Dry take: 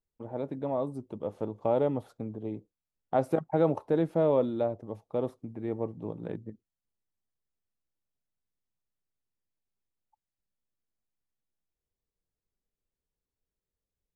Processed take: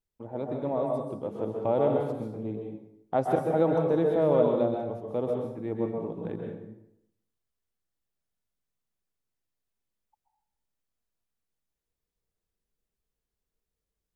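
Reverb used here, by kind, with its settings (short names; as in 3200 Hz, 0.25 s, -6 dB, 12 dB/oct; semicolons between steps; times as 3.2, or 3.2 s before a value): plate-style reverb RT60 0.76 s, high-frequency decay 0.8×, pre-delay 0.115 s, DRR 0.5 dB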